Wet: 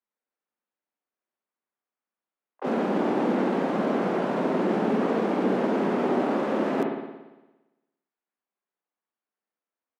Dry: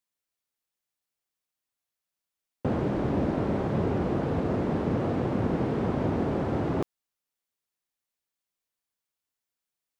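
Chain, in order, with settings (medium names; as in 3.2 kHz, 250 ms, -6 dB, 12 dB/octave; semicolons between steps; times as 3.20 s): steep high-pass 190 Hz 48 dB/octave; harmony voices -3 st -9 dB, +7 st -7 dB, +12 st -9 dB; level-controlled noise filter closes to 1.6 kHz, open at -28 dBFS; spring tank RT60 1.1 s, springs 57 ms, chirp 60 ms, DRR 1 dB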